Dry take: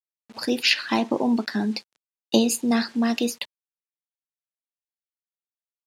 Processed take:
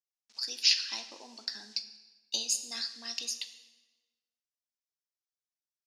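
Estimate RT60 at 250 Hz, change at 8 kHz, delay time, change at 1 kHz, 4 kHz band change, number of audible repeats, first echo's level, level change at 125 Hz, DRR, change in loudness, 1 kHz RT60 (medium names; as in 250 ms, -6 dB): 1.4 s, -2.0 dB, no echo, -22.5 dB, -2.5 dB, no echo, no echo, no reading, 9.0 dB, -8.0 dB, 1.2 s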